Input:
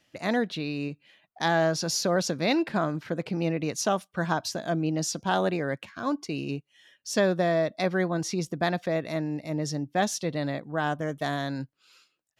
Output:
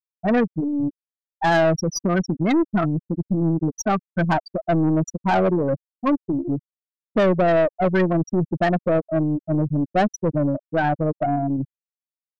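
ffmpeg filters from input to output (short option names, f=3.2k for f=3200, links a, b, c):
-filter_complex "[0:a]asettb=1/sr,asplit=3[a][b][c];[a]atrim=end=1.944[d];[b]atrim=start=1.94:end=4.08,asetpts=PTS-STARTPTS,afade=t=in:d=0.004:c=qsin,afade=t=out:st=2.136:d=0.004:c=qsin,equalizer=f=530:w=2.6:g=-10[e];[c]atrim=start=4.076[f];[d][e]acrossfade=d=0.004:c1=hsin:c2=qsin[g];[g][f]acrossfade=d=0.004:c1=qsin:c2=hsin,afftfilt=real='re*gte(hypot(re,im),0.158)':imag='im*gte(hypot(re,im),0.158)':win_size=1024:overlap=0.75,acontrast=28,aeval=exprs='0.355*(cos(1*acos(clip(val(0)/0.355,-1,1)))-cos(1*PI/2))+0.0501*(cos(4*acos(clip(val(0)/0.355,-1,1)))-cos(4*PI/2))':c=same,asoftclip=type=tanh:threshold=-19dB,volume=6.5dB"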